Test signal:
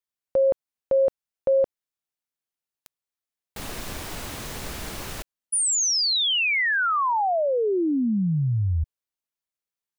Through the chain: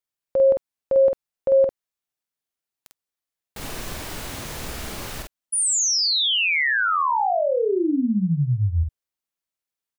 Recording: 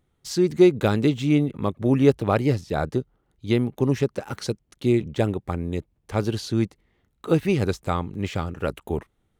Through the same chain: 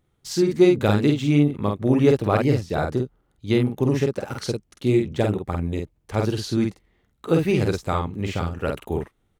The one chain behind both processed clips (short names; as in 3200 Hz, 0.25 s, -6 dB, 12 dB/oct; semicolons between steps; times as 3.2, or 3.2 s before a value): doubler 48 ms -3.5 dB